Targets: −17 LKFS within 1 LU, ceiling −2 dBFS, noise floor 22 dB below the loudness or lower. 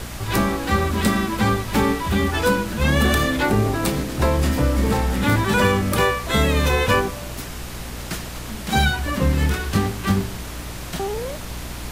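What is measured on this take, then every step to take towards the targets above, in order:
mains hum 60 Hz; hum harmonics up to 300 Hz; level of the hum −32 dBFS; background noise floor −32 dBFS; target noise floor −43 dBFS; integrated loudness −20.5 LKFS; sample peak −7.0 dBFS; target loudness −17.0 LKFS
→ hum removal 60 Hz, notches 5
noise reduction from a noise print 11 dB
level +3.5 dB

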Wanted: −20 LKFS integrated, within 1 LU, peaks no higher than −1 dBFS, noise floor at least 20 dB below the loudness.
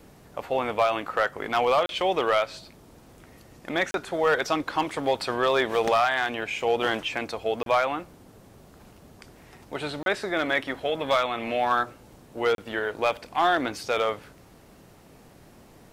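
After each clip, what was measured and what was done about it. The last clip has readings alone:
share of clipped samples 0.4%; peaks flattened at −14.5 dBFS; number of dropouts 5; longest dropout 32 ms; integrated loudness −26.0 LKFS; sample peak −14.5 dBFS; target loudness −20.0 LKFS
→ clipped peaks rebuilt −14.5 dBFS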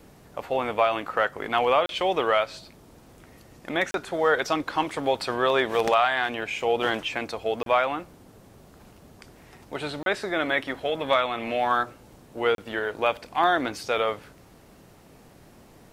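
share of clipped samples 0.0%; number of dropouts 5; longest dropout 32 ms
→ repair the gap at 0:01.86/0:03.91/0:07.63/0:10.03/0:12.55, 32 ms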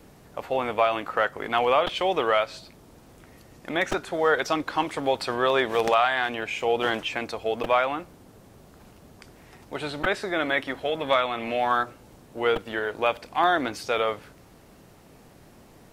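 number of dropouts 0; integrated loudness −25.5 LKFS; sample peak −7.0 dBFS; target loudness −20.0 LKFS
→ level +5.5 dB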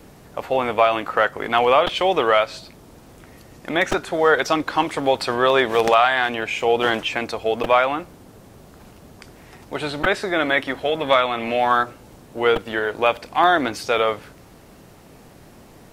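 integrated loudness −20.0 LKFS; sample peak −1.5 dBFS; background noise floor −47 dBFS

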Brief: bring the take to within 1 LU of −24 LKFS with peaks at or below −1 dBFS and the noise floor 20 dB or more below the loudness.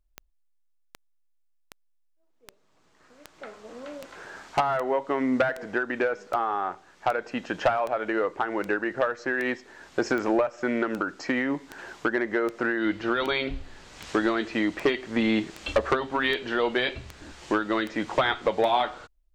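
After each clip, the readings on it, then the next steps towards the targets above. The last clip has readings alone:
number of clicks 25; integrated loudness −27.0 LKFS; sample peak −11.0 dBFS; target loudness −24.0 LKFS
→ click removal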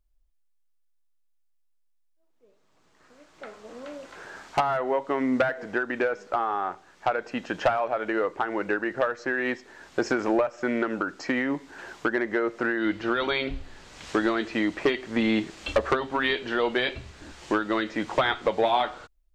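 number of clicks 0; integrated loudness −27.0 LKFS; sample peak −11.0 dBFS; target loudness −24.0 LKFS
→ level +3 dB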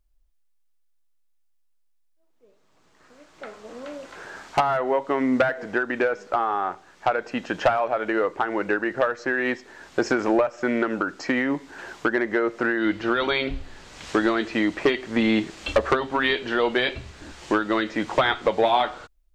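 integrated loudness −24.0 LKFS; sample peak −8.0 dBFS; background noise floor −63 dBFS

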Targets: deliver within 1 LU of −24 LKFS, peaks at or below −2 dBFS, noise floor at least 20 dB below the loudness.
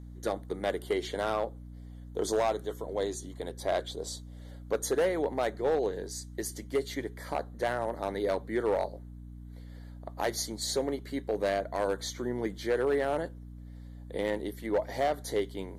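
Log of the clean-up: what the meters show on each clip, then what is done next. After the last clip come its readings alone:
share of clipped samples 1.1%; peaks flattened at −21.5 dBFS; mains hum 60 Hz; hum harmonics up to 300 Hz; level of the hum −43 dBFS; integrated loudness −32.5 LKFS; sample peak −21.5 dBFS; target loudness −24.0 LKFS
→ clipped peaks rebuilt −21.5 dBFS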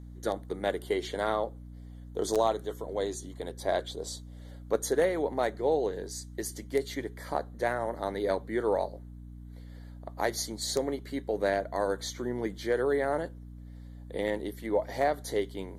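share of clipped samples 0.0%; mains hum 60 Hz; hum harmonics up to 240 Hz; level of the hum −43 dBFS
→ hum removal 60 Hz, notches 4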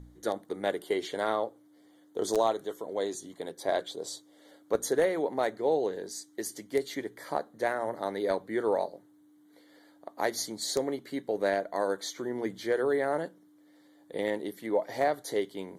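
mains hum none found; integrated loudness −31.5 LKFS; sample peak −12.5 dBFS; target loudness −24.0 LKFS
→ level +7.5 dB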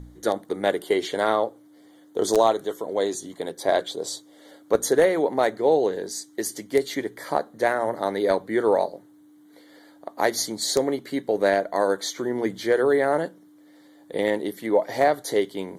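integrated loudness −24.0 LKFS; sample peak −5.0 dBFS; background noise floor −53 dBFS

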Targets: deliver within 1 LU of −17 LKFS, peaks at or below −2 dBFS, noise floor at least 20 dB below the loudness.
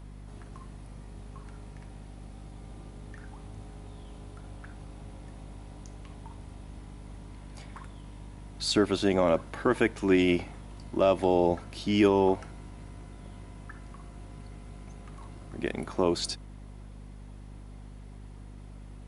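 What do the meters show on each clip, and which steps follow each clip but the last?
mains hum 50 Hz; hum harmonics up to 250 Hz; level of the hum −43 dBFS; integrated loudness −27.0 LKFS; sample peak −10.5 dBFS; target loudness −17.0 LKFS
→ hum removal 50 Hz, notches 5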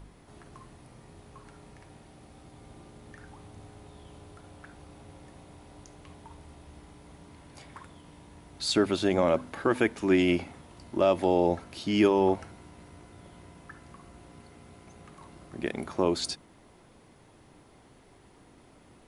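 mains hum none found; integrated loudness −27.0 LKFS; sample peak −10.5 dBFS; target loudness −17.0 LKFS
→ level +10 dB
brickwall limiter −2 dBFS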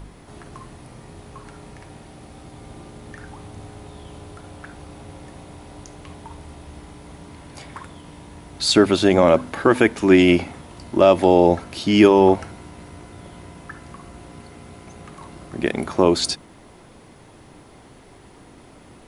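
integrated loudness −17.0 LKFS; sample peak −2.0 dBFS; background noise floor −47 dBFS

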